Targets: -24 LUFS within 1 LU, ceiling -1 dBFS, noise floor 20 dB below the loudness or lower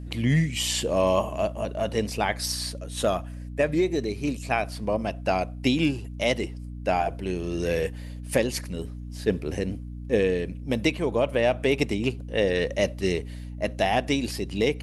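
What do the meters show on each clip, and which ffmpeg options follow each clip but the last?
hum 60 Hz; highest harmonic 300 Hz; hum level -34 dBFS; loudness -26.5 LUFS; peak level -8.5 dBFS; loudness target -24.0 LUFS
-> -af "bandreject=f=60:t=h:w=6,bandreject=f=120:t=h:w=6,bandreject=f=180:t=h:w=6,bandreject=f=240:t=h:w=6,bandreject=f=300:t=h:w=6"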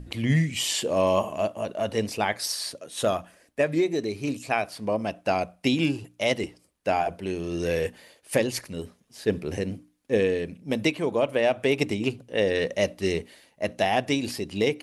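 hum not found; loudness -27.0 LUFS; peak level -8.5 dBFS; loudness target -24.0 LUFS
-> -af "volume=1.41"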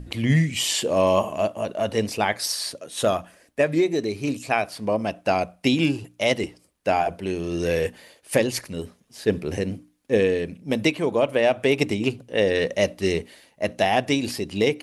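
loudness -24.0 LUFS; peak level -5.5 dBFS; noise floor -61 dBFS

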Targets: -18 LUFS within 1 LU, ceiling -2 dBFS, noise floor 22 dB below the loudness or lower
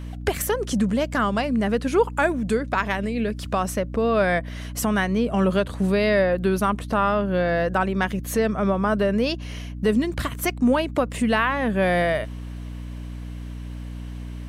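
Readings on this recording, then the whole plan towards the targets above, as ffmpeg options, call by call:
hum 60 Hz; highest harmonic 300 Hz; hum level -31 dBFS; loudness -23.0 LUFS; peak level -9.0 dBFS; loudness target -18.0 LUFS
-> -af "bandreject=f=60:t=h:w=4,bandreject=f=120:t=h:w=4,bandreject=f=180:t=h:w=4,bandreject=f=240:t=h:w=4,bandreject=f=300:t=h:w=4"
-af "volume=1.78"

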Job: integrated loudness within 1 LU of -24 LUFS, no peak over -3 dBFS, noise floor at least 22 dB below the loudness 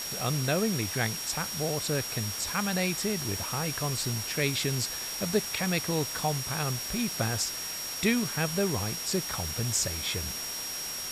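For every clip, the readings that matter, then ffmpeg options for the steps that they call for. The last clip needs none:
steady tone 5.6 kHz; tone level -36 dBFS; noise floor -36 dBFS; noise floor target -52 dBFS; loudness -29.5 LUFS; peak level -13.0 dBFS; loudness target -24.0 LUFS
-> -af "bandreject=f=5600:w=30"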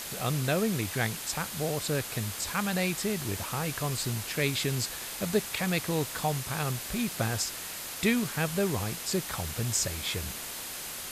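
steady tone not found; noise floor -39 dBFS; noise floor target -53 dBFS
-> -af "afftdn=nr=14:nf=-39"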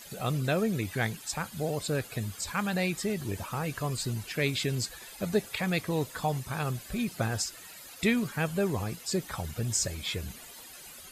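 noise floor -48 dBFS; noise floor target -54 dBFS
-> -af "afftdn=nr=6:nf=-48"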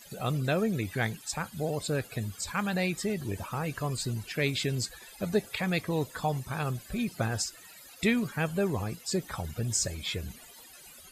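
noise floor -51 dBFS; noise floor target -54 dBFS
-> -af "afftdn=nr=6:nf=-51"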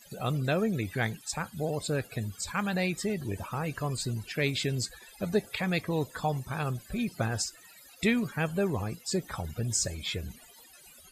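noise floor -54 dBFS; loudness -31.5 LUFS; peak level -13.0 dBFS; loudness target -24.0 LUFS
-> -af "volume=2.37"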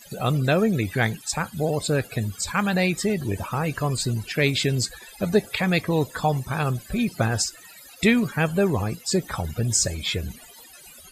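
loudness -24.0 LUFS; peak level -5.5 dBFS; noise floor -47 dBFS

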